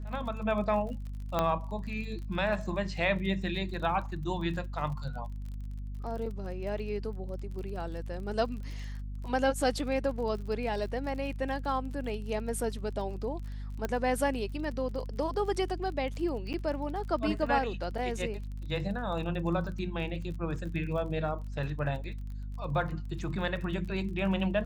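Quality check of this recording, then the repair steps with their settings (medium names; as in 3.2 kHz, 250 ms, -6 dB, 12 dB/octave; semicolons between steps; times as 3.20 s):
crackle 32 per s -40 dBFS
hum 50 Hz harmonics 5 -38 dBFS
1.39 s: pop -14 dBFS
13.85 s: pop -18 dBFS
16.53–16.54 s: dropout 9.1 ms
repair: de-click; de-hum 50 Hz, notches 5; interpolate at 16.53 s, 9.1 ms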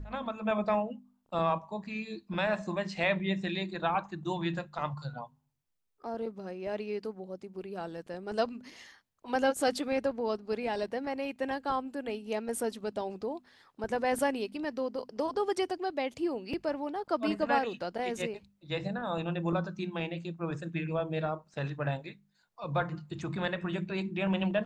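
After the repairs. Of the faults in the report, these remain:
1.39 s: pop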